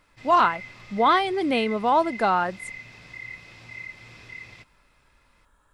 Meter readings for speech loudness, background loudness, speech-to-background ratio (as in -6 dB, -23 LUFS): -22.5 LUFS, -39.5 LUFS, 17.0 dB